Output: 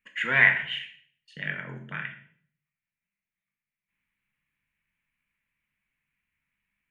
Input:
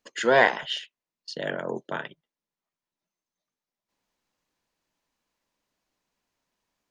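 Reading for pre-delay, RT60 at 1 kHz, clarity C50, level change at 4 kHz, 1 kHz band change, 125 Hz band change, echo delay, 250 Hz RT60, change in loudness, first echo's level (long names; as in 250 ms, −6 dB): 16 ms, 0.50 s, 9.0 dB, −3.0 dB, −10.0 dB, +4.0 dB, no echo audible, 0.70 s, +1.5 dB, no echo audible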